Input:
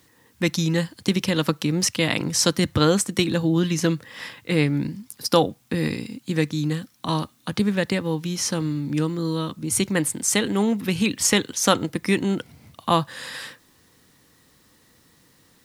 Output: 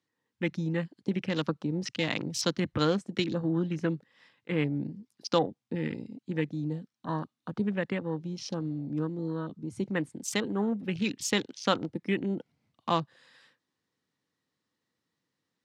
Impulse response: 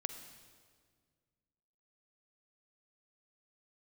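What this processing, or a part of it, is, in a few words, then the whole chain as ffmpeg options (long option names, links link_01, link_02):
over-cleaned archive recording: -af "highpass=120,lowpass=5900,afwtdn=0.0282,volume=-7.5dB"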